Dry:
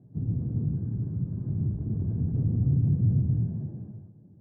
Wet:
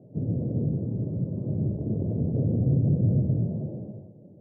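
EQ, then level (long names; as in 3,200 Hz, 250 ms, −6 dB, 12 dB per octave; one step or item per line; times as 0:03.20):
high-pass filter 230 Hz 6 dB per octave
low-pass with resonance 570 Hz, resonance Q 4.9
+6.5 dB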